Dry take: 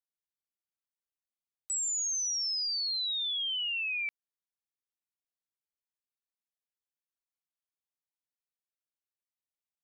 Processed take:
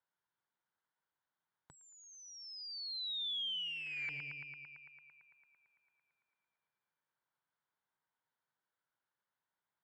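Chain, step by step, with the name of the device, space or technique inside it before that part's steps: analogue delay pedal into a guitar amplifier (bucket-brigade echo 112 ms, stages 2048, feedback 79%, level -10 dB; valve stage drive 40 dB, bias 0.3; cabinet simulation 100–3500 Hz, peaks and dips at 140 Hz +6 dB, 260 Hz -4 dB, 940 Hz +9 dB, 1.5 kHz +8 dB, 2.6 kHz -10 dB); trim +7 dB

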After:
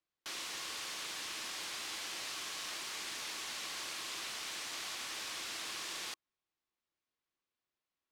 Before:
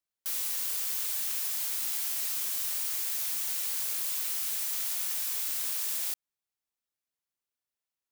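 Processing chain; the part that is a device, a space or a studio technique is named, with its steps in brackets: inside a cardboard box (low-pass 4.2 kHz 12 dB/octave; small resonant body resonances 330/1100 Hz, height 7 dB); trim +2.5 dB

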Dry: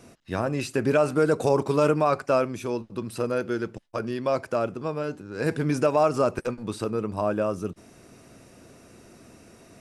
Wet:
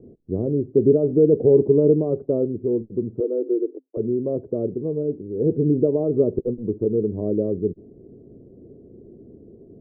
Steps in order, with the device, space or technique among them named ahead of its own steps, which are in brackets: 3.20–3.97 s: Chebyshev high-pass 260 Hz, order 8; under water (low-pass 420 Hz 24 dB/octave; peaking EQ 420 Hz +9 dB 0.55 oct); trim +4.5 dB

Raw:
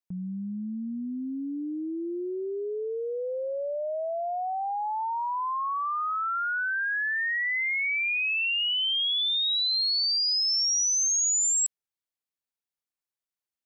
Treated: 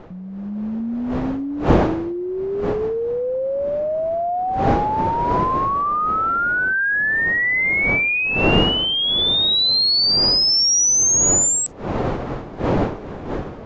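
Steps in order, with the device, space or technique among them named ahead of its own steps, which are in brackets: smartphone video outdoors (wind noise 530 Hz; level rider gain up to 9 dB; AAC 48 kbps 16 kHz)

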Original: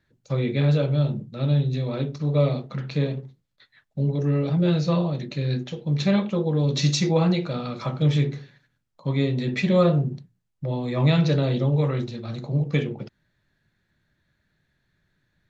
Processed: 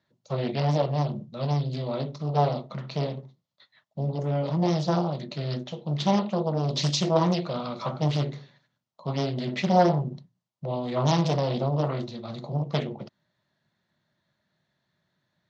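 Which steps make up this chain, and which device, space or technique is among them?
full-range speaker at full volume (loudspeaker Doppler distortion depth 0.84 ms; cabinet simulation 170–6600 Hz, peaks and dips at 290 Hz -6 dB, 440 Hz -6 dB, 630 Hz +5 dB, 1 kHz +4 dB, 1.6 kHz -8 dB, 2.4 kHz -6 dB)

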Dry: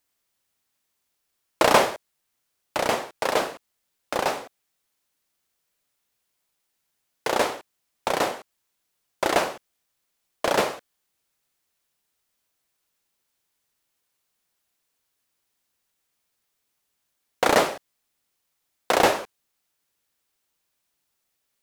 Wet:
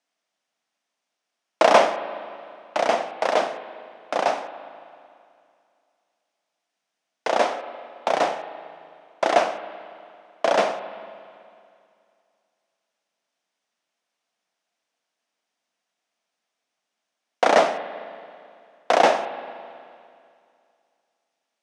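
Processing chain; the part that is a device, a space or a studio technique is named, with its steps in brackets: television speaker (cabinet simulation 190–7500 Hz, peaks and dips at 380 Hz -5 dB, 680 Hz +8 dB, 4.3 kHz -4 dB, 7.4 kHz -6 dB); spring tank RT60 2.4 s, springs 37/55 ms, chirp 55 ms, DRR 11 dB

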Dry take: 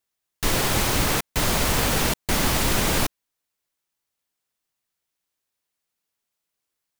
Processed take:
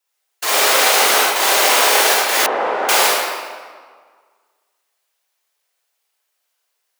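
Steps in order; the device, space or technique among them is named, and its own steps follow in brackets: whispering ghost (whisper effect; high-pass 470 Hz 24 dB/octave; reverberation RT60 1.7 s, pre-delay 33 ms, DRR -7 dB); 2.46–2.89 s: low-pass 1.1 kHz 12 dB/octave; trim +4 dB

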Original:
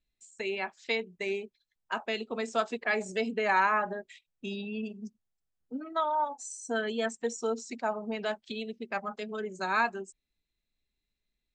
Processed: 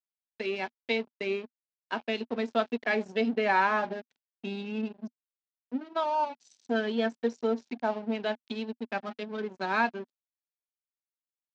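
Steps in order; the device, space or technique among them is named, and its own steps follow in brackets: treble shelf 4.4 kHz -5 dB; blown loudspeaker (crossover distortion -44.5 dBFS; cabinet simulation 140–5100 Hz, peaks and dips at 240 Hz +6 dB, 1.2 kHz -7 dB, 2 kHz -3 dB); trim +3.5 dB

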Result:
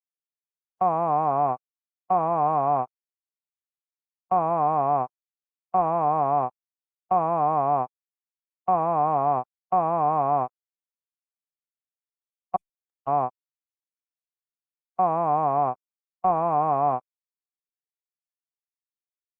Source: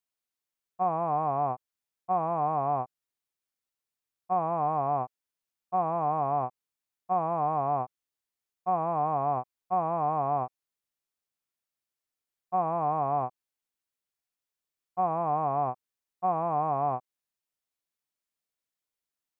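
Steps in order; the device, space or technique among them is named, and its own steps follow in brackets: 12.56–13.06 s: inverse Chebyshev band-stop 230–1300 Hz, stop band 80 dB; video call (high-pass 150 Hz 12 dB/octave; level rider gain up to 13 dB; gate -19 dBFS, range -38 dB; trim -7 dB; Opus 24 kbps 48 kHz)

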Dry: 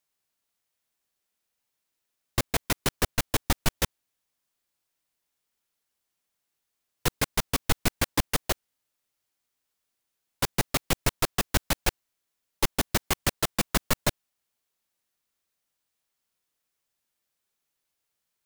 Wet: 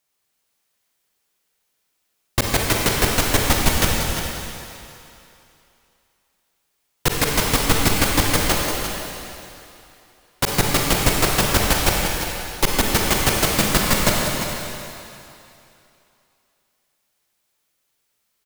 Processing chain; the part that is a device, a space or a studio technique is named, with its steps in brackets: cave (delay 346 ms -10 dB; reverberation RT60 2.8 s, pre-delay 37 ms, DRR -1.5 dB); trim +6 dB

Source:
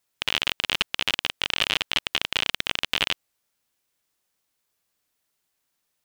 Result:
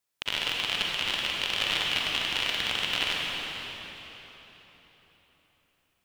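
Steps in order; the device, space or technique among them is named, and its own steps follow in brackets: cathedral (reverberation RT60 4.1 s, pre-delay 38 ms, DRR -3 dB); trim -6.5 dB

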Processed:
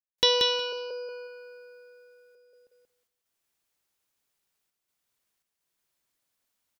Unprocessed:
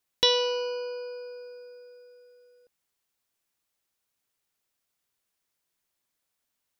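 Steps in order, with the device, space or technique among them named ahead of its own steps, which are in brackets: trance gate with a delay (trance gate ".xxx.xxxxxxxx" 83 bpm; feedback delay 182 ms, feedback 16%, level -4 dB)

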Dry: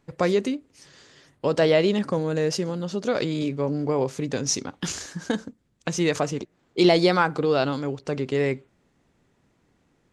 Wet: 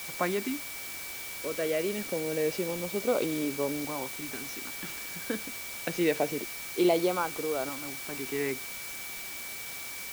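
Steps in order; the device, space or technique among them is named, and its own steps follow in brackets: shortwave radio (band-pass 270–2700 Hz; tremolo 0.33 Hz, depth 59%; LFO notch saw up 0.26 Hz 410–2400 Hz; whistle 2.3 kHz -41 dBFS; white noise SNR 8 dB); trim -1.5 dB

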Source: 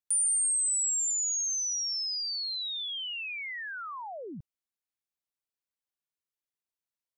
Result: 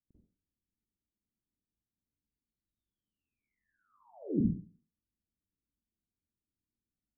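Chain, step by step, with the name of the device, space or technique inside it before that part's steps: next room (low-pass 270 Hz 24 dB/octave; reverberation RT60 0.45 s, pre-delay 39 ms, DRR -10.5 dB); trim +8.5 dB

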